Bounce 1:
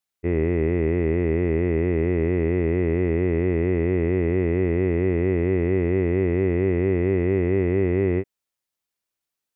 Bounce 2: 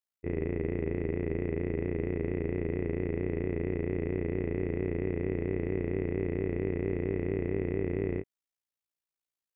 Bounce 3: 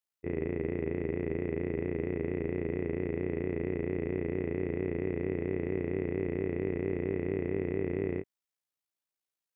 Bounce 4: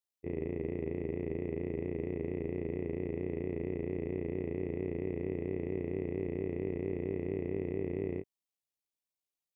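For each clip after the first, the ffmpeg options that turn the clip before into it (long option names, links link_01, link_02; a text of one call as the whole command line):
ffmpeg -i in.wav -af "tremolo=f=57:d=0.889,volume=-6.5dB" out.wav
ffmpeg -i in.wav -af "highpass=frequency=110:poles=1" out.wav
ffmpeg -i in.wav -af "equalizer=frequency=1500:width_type=o:width=0.6:gain=-13.5,bandreject=frequency=1600:width=21,volume=-3dB" out.wav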